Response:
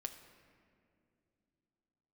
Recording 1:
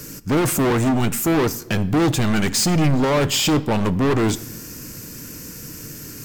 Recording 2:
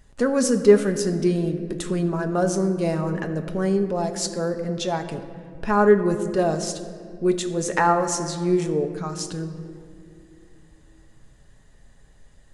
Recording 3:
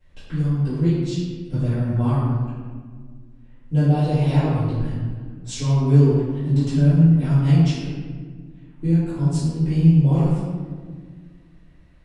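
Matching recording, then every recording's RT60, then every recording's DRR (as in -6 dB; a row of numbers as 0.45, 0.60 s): 2; 0.95, 2.5, 1.7 s; 13.5, 5.0, -15.0 dB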